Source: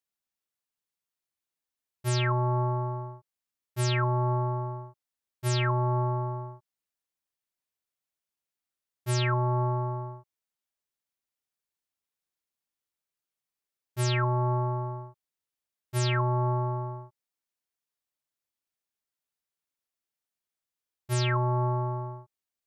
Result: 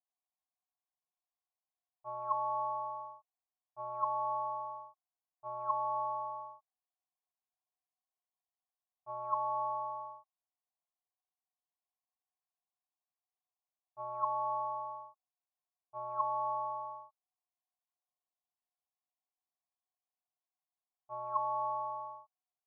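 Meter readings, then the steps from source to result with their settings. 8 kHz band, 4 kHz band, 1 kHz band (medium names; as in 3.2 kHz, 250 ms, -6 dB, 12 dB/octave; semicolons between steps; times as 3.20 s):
under -35 dB, under -40 dB, -1.5 dB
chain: cascade formant filter a; low-pass that closes with the level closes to 1.7 kHz, closed at -43 dBFS; high-order bell 800 Hz +15.5 dB; trim -8 dB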